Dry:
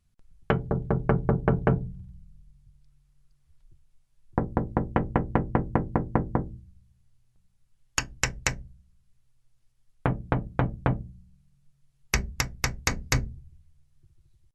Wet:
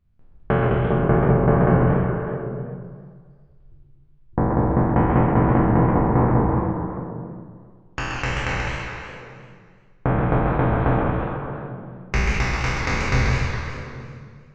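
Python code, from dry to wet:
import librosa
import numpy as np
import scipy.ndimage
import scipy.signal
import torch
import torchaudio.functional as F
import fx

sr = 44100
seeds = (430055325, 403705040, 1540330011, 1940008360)

y = fx.spec_trails(x, sr, decay_s=1.77)
y = fx.spacing_loss(y, sr, db_at_10k=fx.steps((0.0, 38.0), (10.08, 30.0)))
y = fx.echo_stepped(y, sr, ms=207, hz=3200.0, octaves=-1.4, feedback_pct=70, wet_db=-3.5)
y = fx.echo_warbled(y, sr, ms=131, feedback_pct=37, rate_hz=2.8, cents=149, wet_db=-5.0)
y = y * 10.0 ** (2.5 / 20.0)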